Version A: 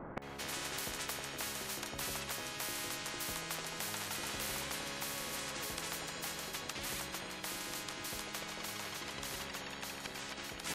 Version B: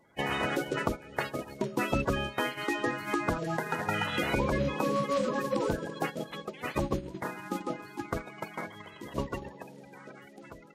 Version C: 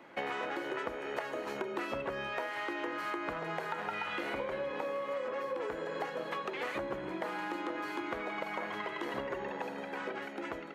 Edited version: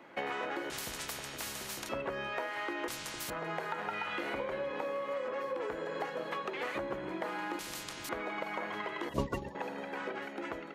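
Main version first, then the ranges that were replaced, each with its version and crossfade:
C
0.70–1.89 s: from A
2.88–3.30 s: from A
7.59–8.09 s: from A
9.09–9.55 s: from B

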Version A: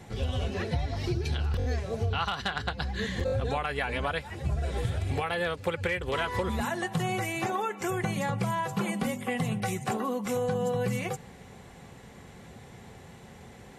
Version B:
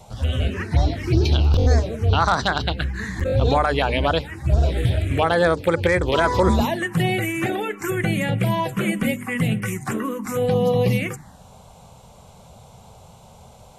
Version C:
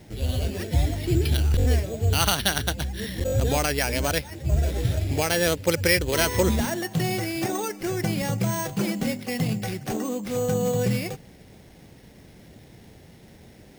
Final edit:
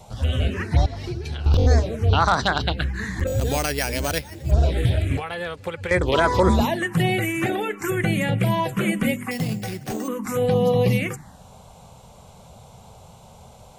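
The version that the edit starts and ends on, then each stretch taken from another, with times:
B
0.86–1.46 s: from A
3.27–4.51 s: from C
5.17–5.91 s: from A
9.31–10.08 s: from C

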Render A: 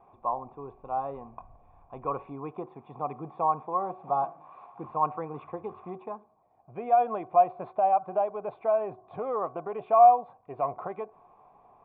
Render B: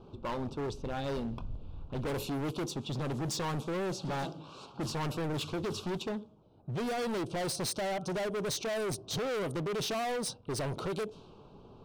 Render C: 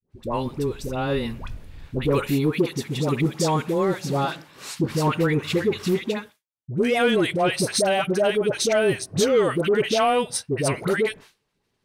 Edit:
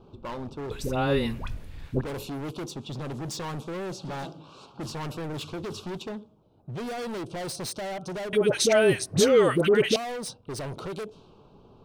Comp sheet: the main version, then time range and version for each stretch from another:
B
0.71–2.01 s: from C
8.33–9.96 s: from C
not used: A

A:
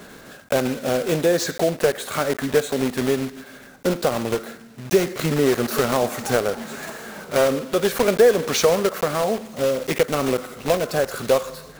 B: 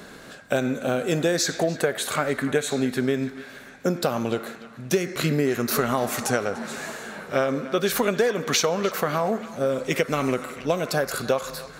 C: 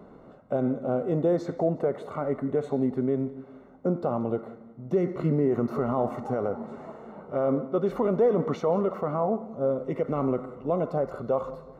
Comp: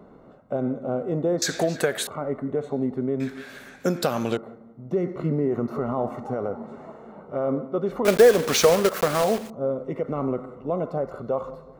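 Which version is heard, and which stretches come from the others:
C
1.42–2.07 s: from B
3.20–4.37 s: from B
8.05–9.50 s: from A

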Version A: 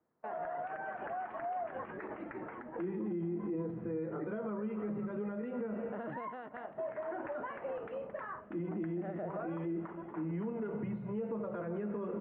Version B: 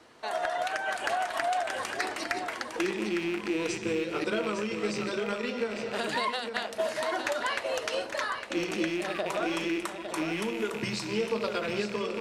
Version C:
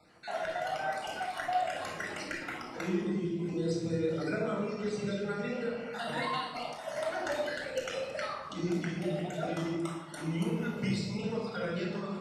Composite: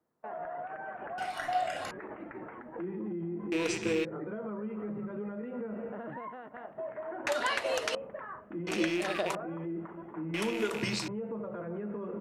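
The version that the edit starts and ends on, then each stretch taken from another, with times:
A
1.18–1.91 s: from C
3.52–4.05 s: from B
7.27–7.95 s: from B
8.67–9.35 s: from B
10.34–11.08 s: from B

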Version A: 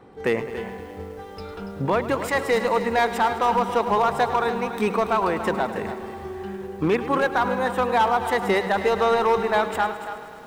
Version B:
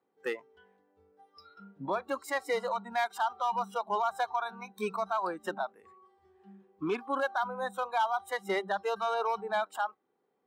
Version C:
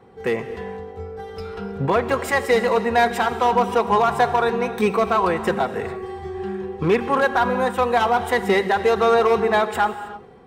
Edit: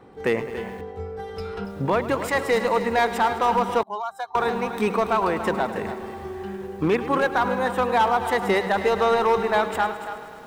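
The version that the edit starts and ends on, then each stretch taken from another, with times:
A
0.81–1.65 s: from C
3.83–4.35 s: from B

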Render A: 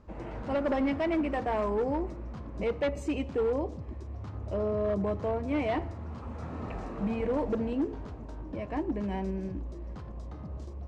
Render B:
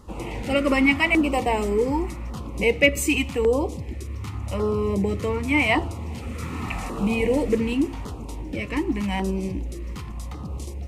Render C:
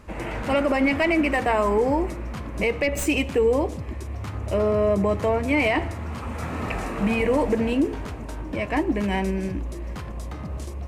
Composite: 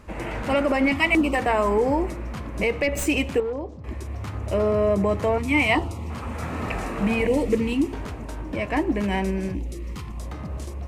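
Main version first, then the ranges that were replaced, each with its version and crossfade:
C
0.92–1.35 s: from B
3.40–3.84 s: from A
5.38–6.10 s: from B
7.27–7.93 s: from B
9.55–10.20 s: from B

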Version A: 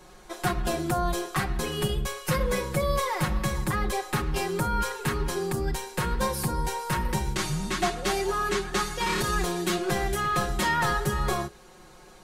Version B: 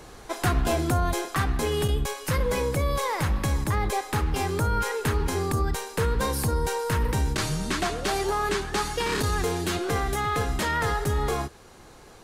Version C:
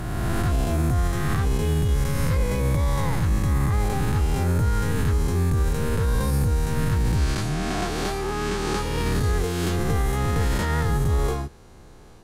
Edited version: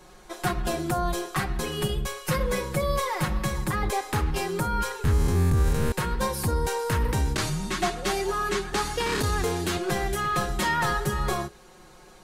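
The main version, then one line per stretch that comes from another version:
A
3.83–4.31 s: from B
5.04–5.92 s: from C
6.47–7.50 s: from B
8.73–9.78 s: from B

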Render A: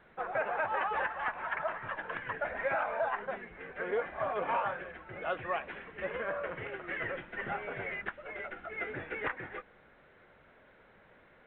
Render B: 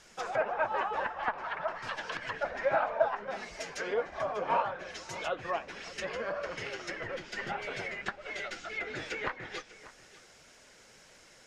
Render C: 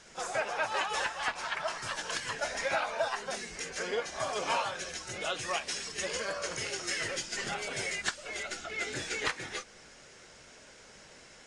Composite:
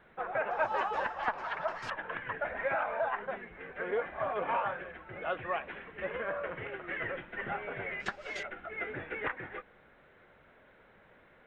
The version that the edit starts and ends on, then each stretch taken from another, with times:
A
0.51–1.90 s: from B
8.00–8.43 s: from B
not used: C

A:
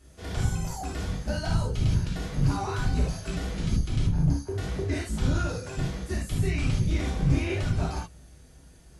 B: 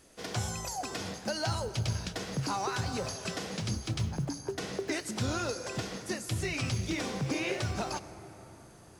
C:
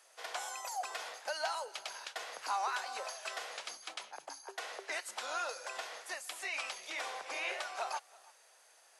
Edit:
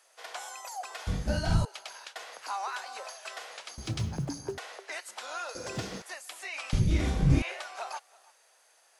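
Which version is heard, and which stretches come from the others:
C
1.07–1.65 s: from A
3.78–4.58 s: from B
5.55–6.02 s: from B
6.73–7.42 s: from A

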